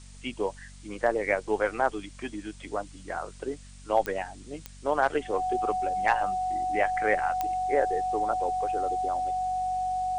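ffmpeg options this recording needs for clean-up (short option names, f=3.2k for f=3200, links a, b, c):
-af "adeclick=t=4,bandreject=f=47.4:t=h:w=4,bandreject=f=94.8:t=h:w=4,bandreject=f=142.2:t=h:w=4,bandreject=f=189.6:t=h:w=4,bandreject=f=237:t=h:w=4,bandreject=f=740:w=30,afftdn=nr=26:nf=-47"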